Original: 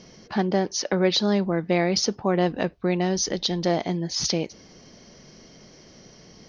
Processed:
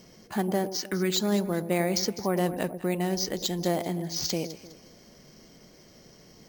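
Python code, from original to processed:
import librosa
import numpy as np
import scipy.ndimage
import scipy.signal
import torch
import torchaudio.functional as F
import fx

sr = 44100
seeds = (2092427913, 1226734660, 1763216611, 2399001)

y = fx.band_shelf(x, sr, hz=690.0, db=-14.0, octaves=1.2, at=(0.7, 1.1))
y = fx.echo_alternate(y, sr, ms=102, hz=870.0, feedback_pct=57, wet_db=-10.0)
y = np.repeat(y[::4], 4)[:len(y)]
y = y * librosa.db_to_amplitude(-4.5)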